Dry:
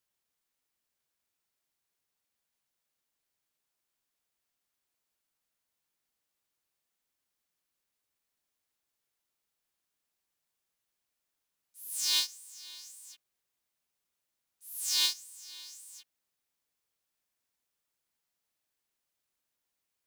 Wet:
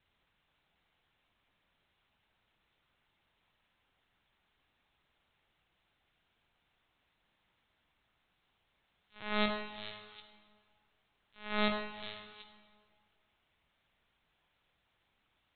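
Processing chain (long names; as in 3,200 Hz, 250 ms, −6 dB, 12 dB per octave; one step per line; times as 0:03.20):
in parallel at +2 dB: downward compressor 6 to 1, threshold −43 dBFS, peak gain reduction 20 dB
on the sum: asymmetric clip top −31.5 dBFS
speed change +29%
linear-prediction vocoder at 8 kHz pitch kept
convolution reverb RT60 1.9 s, pre-delay 36 ms, DRR 6 dB
level +7.5 dB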